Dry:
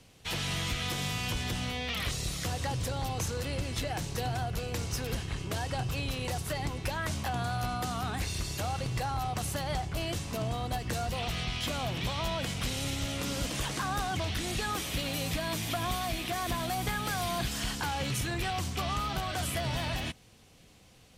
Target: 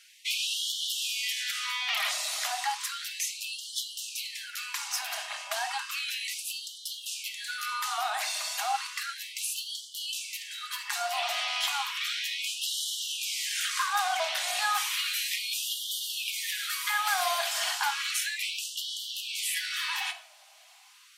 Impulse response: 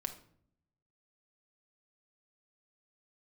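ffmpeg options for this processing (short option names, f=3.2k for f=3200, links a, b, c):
-filter_complex "[1:a]atrim=start_sample=2205[a];[0:a][a]afir=irnorm=-1:irlink=0,afftfilt=real='re*gte(b*sr/1024,560*pow(2900/560,0.5+0.5*sin(2*PI*0.33*pts/sr)))':imag='im*gte(b*sr/1024,560*pow(2900/560,0.5+0.5*sin(2*PI*0.33*pts/sr)))':win_size=1024:overlap=0.75,volume=7dB"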